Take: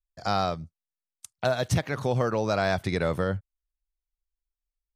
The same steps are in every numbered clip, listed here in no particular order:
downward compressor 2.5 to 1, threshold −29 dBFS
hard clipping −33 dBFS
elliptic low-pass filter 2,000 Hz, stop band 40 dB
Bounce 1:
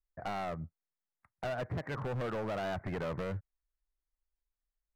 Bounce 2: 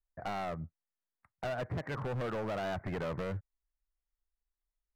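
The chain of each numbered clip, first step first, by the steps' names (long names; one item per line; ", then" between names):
downward compressor, then elliptic low-pass filter, then hard clipping
elliptic low-pass filter, then downward compressor, then hard clipping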